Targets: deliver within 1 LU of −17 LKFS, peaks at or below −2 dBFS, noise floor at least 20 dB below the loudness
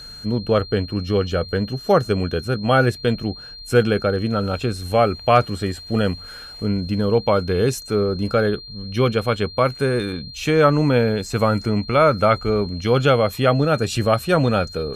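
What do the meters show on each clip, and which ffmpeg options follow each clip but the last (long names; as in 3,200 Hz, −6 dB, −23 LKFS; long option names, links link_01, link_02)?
interfering tone 4,200 Hz; level of the tone −36 dBFS; integrated loudness −20.0 LKFS; sample peak −2.0 dBFS; target loudness −17.0 LKFS
→ -af "bandreject=frequency=4200:width=30"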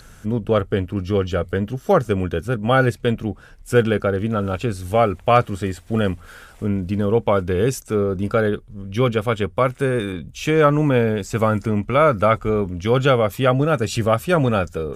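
interfering tone none found; integrated loudness −20.0 LKFS; sample peak −2.0 dBFS; target loudness −17.0 LKFS
→ -af "volume=3dB,alimiter=limit=-2dB:level=0:latency=1"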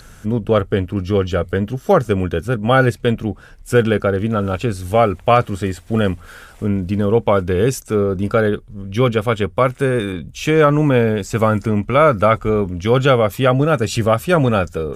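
integrated loudness −17.5 LKFS; sample peak −2.0 dBFS; background noise floor −42 dBFS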